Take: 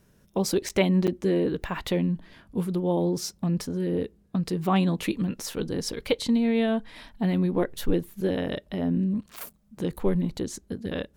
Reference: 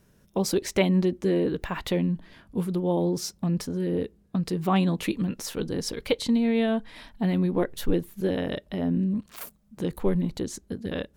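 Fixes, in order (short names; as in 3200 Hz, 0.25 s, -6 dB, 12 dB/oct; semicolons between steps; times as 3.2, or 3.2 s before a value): interpolate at 0.69/1.07/9.53, 7.5 ms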